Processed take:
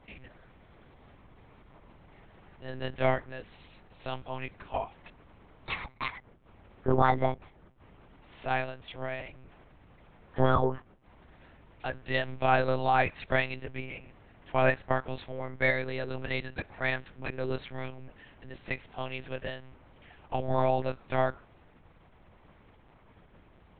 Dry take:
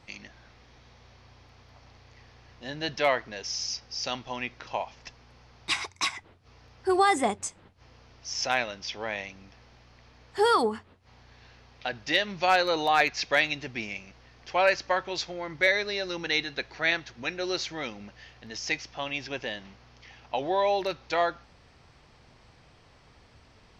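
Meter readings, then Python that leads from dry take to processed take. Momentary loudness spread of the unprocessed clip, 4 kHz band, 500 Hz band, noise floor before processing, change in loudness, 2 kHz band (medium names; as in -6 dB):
15 LU, -12.5 dB, -2.0 dB, -58 dBFS, -3.5 dB, -5.0 dB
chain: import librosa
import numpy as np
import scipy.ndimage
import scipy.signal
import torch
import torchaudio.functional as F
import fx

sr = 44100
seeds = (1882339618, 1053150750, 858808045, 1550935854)

y = fx.lowpass(x, sr, hz=1400.0, slope=6)
y = fx.lpc_monotone(y, sr, seeds[0], pitch_hz=130.0, order=8)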